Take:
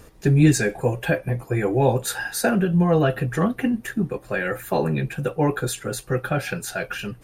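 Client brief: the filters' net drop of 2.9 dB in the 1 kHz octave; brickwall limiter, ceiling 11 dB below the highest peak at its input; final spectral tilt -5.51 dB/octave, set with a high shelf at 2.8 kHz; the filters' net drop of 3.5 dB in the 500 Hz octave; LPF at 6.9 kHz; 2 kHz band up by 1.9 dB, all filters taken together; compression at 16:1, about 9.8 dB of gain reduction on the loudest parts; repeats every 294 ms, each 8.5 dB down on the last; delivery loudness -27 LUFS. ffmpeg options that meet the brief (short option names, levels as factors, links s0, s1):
-af "lowpass=6900,equalizer=f=500:t=o:g=-3.5,equalizer=f=1000:t=o:g=-3.5,equalizer=f=2000:t=o:g=7.5,highshelf=f=2800:g=-8.5,acompressor=threshold=0.1:ratio=16,alimiter=limit=0.0668:level=0:latency=1,aecho=1:1:294|588|882|1176:0.376|0.143|0.0543|0.0206,volume=1.68"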